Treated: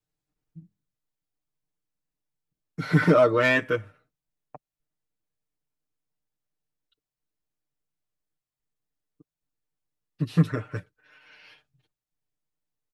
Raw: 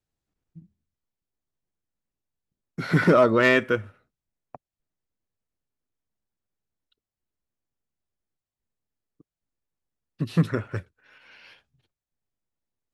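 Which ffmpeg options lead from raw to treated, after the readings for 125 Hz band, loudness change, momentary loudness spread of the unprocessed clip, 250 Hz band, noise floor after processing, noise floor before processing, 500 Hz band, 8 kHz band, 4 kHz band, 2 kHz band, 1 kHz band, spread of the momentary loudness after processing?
+0.5 dB, -1.0 dB, 18 LU, -1.5 dB, under -85 dBFS, under -85 dBFS, -1.0 dB, n/a, -2.0 dB, -1.5 dB, -2.0 dB, 18 LU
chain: -af "aecho=1:1:6.6:0.85,volume=-4dB"

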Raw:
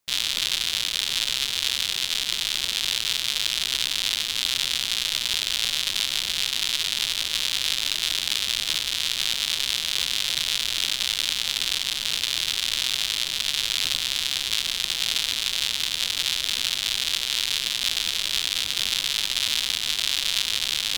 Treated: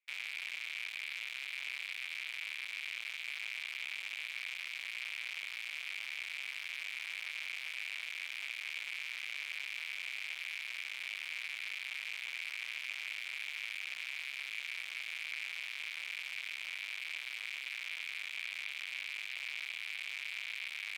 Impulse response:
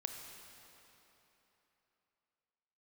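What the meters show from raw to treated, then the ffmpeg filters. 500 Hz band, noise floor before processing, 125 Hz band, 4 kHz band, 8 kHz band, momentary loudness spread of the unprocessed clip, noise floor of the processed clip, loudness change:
under -20 dB, -31 dBFS, under -35 dB, -22.5 dB, -26.5 dB, 1 LU, -45 dBFS, -16.5 dB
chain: -af "dynaudnorm=f=310:g=31:m=9dB,aeval=exprs='(mod(5.62*val(0)+1,2)-1)/5.62':c=same,bandpass=f=2.3k:t=q:w=8.1:csg=0,volume=3dB"

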